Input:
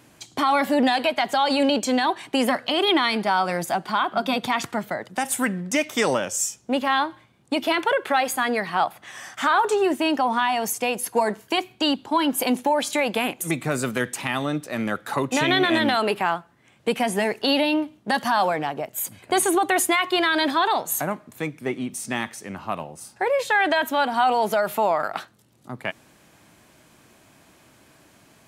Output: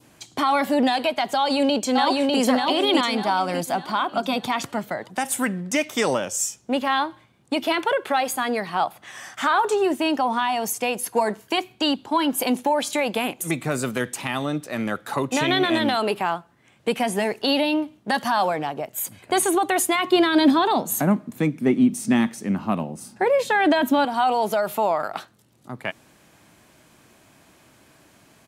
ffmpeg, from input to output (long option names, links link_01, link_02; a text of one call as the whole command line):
ffmpeg -i in.wav -filter_complex "[0:a]asplit=2[link_01][link_02];[link_02]afade=type=in:start_time=1.35:duration=0.01,afade=type=out:start_time=2.4:duration=0.01,aecho=0:1:600|1200|1800|2400|3000:0.841395|0.336558|0.134623|0.0538493|0.0215397[link_03];[link_01][link_03]amix=inputs=2:normalize=0,asettb=1/sr,asplit=3[link_04][link_05][link_06];[link_04]atrim=end=19.954[link_07];[link_05]atrim=start=19.95:end=24.05,asetpts=PTS-STARTPTS,afade=type=in:duration=0.004:curve=qsin,afade=type=out:start_time=4.096:duration=0.004:curve=qsin,equalizer=frequency=220:width=1.1:gain=14.5[link_08];[link_06]atrim=start=24.046[link_09];[link_07][link_08]acrossfade=duration=0.004:curve1=hsin:curve2=qsin[link_10];[link_10][link_09]acrossfade=duration=0.004:curve1=qsin:curve2=hsin,adynamicequalizer=threshold=0.0141:dfrequency=1800:dqfactor=1.5:tfrequency=1800:tqfactor=1.5:attack=5:release=100:ratio=0.375:range=2.5:mode=cutabove:tftype=bell" out.wav